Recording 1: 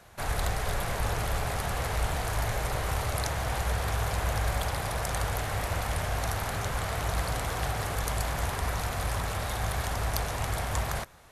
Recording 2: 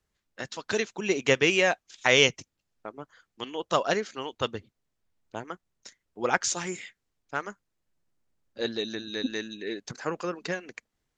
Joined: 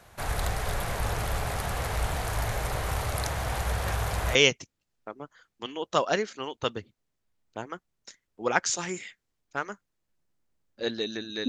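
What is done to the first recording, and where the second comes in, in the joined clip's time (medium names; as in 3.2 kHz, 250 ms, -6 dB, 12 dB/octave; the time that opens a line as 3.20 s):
recording 1
3.86 s: add recording 2 from 1.64 s 0.49 s -15 dB
4.35 s: go over to recording 2 from 2.13 s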